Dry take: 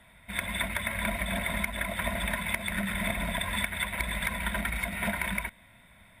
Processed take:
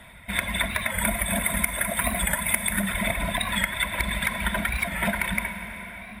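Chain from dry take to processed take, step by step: reverb removal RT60 1.9 s; 0.92–2.83 s: resonant high shelf 6.5 kHz +8.5 dB, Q 1.5; in parallel at 0 dB: compression, threshold -40 dBFS, peak gain reduction 16 dB; on the sum: reverberation RT60 5.7 s, pre-delay 28 ms, DRR 5.5 dB; warped record 45 rpm, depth 100 cents; trim +4 dB

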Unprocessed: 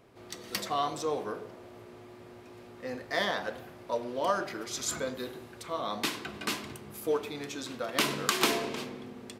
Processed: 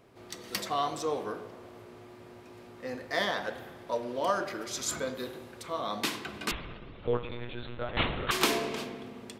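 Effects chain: 6.51–8.31 s: monotone LPC vocoder at 8 kHz 120 Hz; spring tank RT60 1.9 s, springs 57 ms, chirp 80 ms, DRR 14 dB

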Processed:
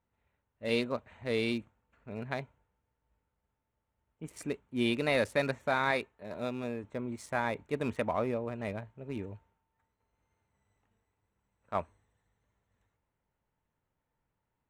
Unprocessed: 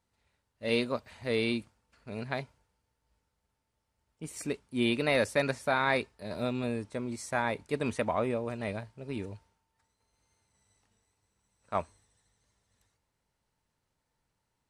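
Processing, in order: local Wiener filter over 9 samples; 5.91–6.84 s: bass shelf 210 Hz -7.5 dB; trim -1.5 dB

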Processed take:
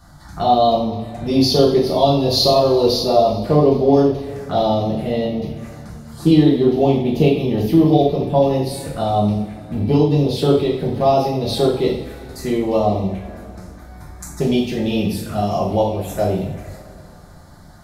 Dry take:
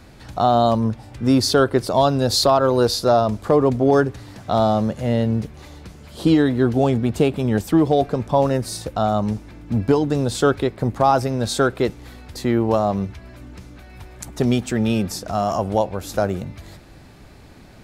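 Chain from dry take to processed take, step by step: touch-sensitive phaser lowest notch 400 Hz, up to 1.5 kHz, full sweep at -18.5 dBFS; two-slope reverb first 0.55 s, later 3.1 s, from -19 dB, DRR -5.5 dB; trim -2 dB

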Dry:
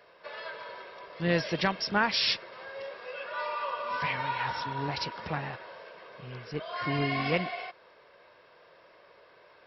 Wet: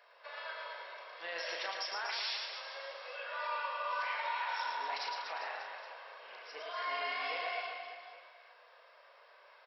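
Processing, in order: high-pass 610 Hz 24 dB/octave; peak limiter -26.5 dBFS, peak gain reduction 12 dB; doubling 36 ms -6 dB; reverse bouncing-ball echo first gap 110 ms, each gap 1.2×, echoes 5; trim -4.5 dB

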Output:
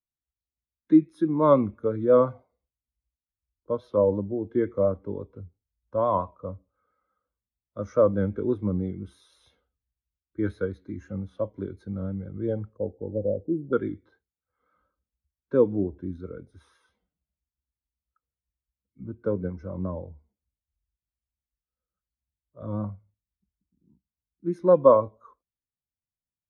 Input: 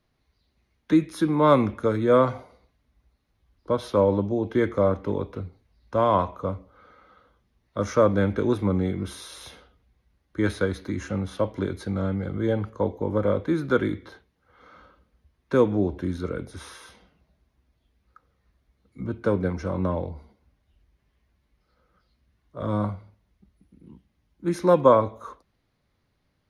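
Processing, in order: vibrato 5.8 Hz 40 cents; 12.77–13.73 s: Chebyshev band-stop 820–9400 Hz, order 5; spectral contrast expander 1.5:1

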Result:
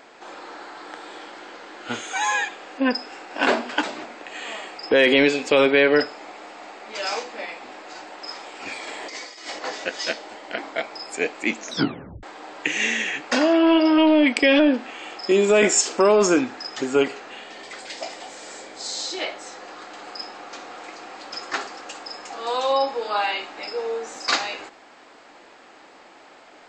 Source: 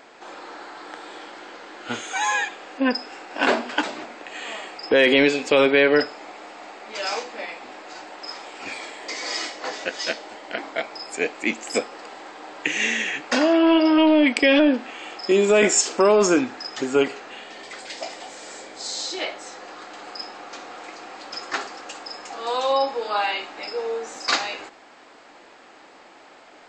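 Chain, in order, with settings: 8.87–9.59 s: compressor with a negative ratio -34 dBFS, ratio -0.5; 11.57 s: tape stop 0.66 s

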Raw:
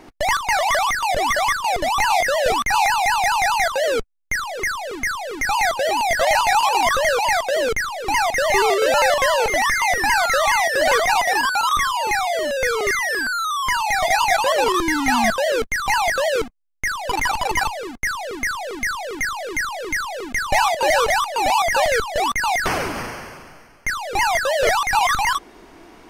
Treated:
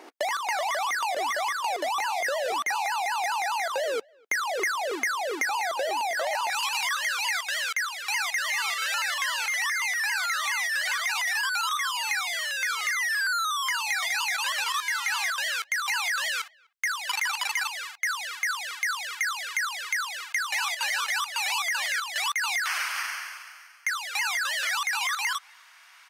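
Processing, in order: high-pass 340 Hz 24 dB/octave, from 6.50 s 1.3 kHz; gain riding within 3 dB 2 s; peak limiter -15 dBFS, peak gain reduction 8 dB; compression 12:1, threshold -24 dBFS, peak gain reduction 6 dB; speakerphone echo 250 ms, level -29 dB

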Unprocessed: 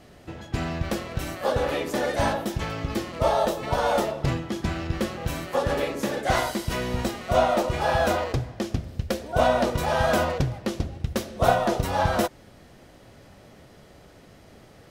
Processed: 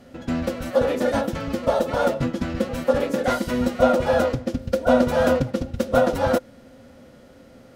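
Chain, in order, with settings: small resonant body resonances 250/520/1400 Hz, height 13 dB, ringing for 75 ms; time stretch by phase-locked vocoder 0.52×

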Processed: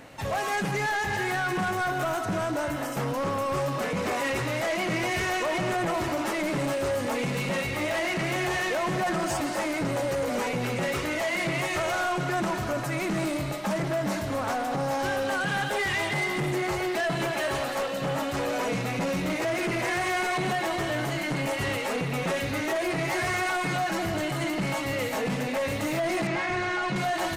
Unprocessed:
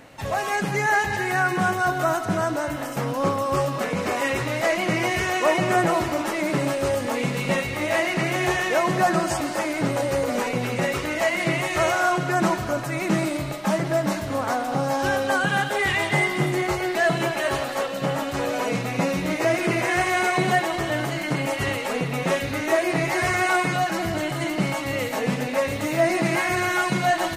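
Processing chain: peak limiter -15 dBFS, peak gain reduction 6.5 dB; saturation -23 dBFS, distortion -13 dB; 26.27–26.96 s: distance through air 110 m

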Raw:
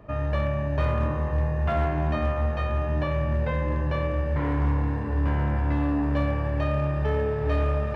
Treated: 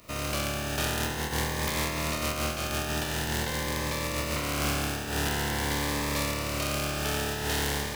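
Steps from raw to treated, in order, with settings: spectral contrast reduction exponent 0.33; Shepard-style phaser rising 0.47 Hz; trim -4 dB

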